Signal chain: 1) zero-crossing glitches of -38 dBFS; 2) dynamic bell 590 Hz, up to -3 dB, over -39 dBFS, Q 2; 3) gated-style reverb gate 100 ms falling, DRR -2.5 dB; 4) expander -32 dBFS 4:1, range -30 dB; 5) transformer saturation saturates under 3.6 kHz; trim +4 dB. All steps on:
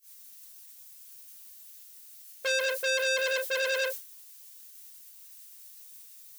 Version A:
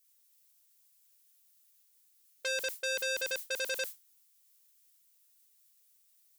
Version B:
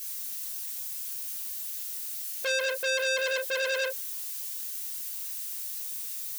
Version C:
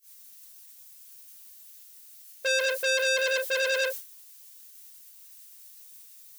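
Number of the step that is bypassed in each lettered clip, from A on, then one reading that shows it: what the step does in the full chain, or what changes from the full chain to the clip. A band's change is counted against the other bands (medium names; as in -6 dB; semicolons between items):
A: 3, momentary loudness spread change -15 LU; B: 4, momentary loudness spread change -14 LU; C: 2, momentary loudness spread change -13 LU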